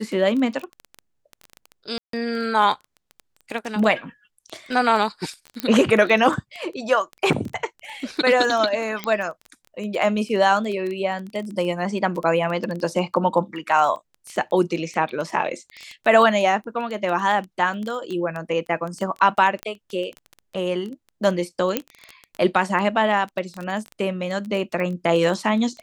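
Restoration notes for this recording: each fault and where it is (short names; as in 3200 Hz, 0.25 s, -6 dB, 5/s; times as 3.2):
crackle 12/s -26 dBFS
1.98–2.13 gap 0.153 s
5.6 pop -9 dBFS
9.04 pop -11 dBFS
19.63 pop -14 dBFS
21.77 pop -6 dBFS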